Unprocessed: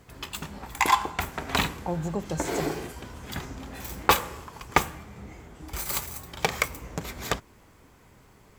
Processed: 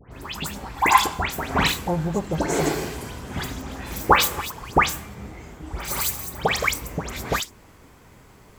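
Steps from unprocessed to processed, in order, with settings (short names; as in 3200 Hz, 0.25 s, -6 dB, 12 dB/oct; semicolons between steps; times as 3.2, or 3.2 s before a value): 2.15–4.4 regenerating reverse delay 0.14 s, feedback 43%, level -12 dB; dispersion highs, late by 0.121 s, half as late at 2200 Hz; gain +5.5 dB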